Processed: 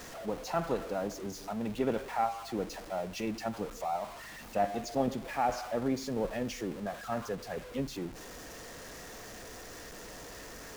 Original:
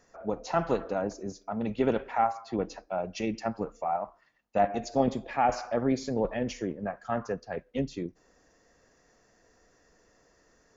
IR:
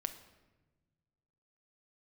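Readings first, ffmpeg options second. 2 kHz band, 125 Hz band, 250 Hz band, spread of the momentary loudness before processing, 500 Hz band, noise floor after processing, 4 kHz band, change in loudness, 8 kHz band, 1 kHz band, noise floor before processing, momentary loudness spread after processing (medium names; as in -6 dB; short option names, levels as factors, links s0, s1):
-2.0 dB, -4.0 dB, -4.0 dB, 8 LU, -4.0 dB, -47 dBFS, +1.5 dB, -5.0 dB, no reading, -4.5 dB, -66 dBFS, 13 LU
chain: -af "aeval=exprs='val(0)+0.5*0.0168*sgn(val(0))':c=same,aeval=exprs='val(0)+0.00158*(sin(2*PI*50*n/s)+sin(2*PI*2*50*n/s)/2+sin(2*PI*3*50*n/s)/3+sin(2*PI*4*50*n/s)/4+sin(2*PI*5*50*n/s)/5)':c=same,volume=0.531"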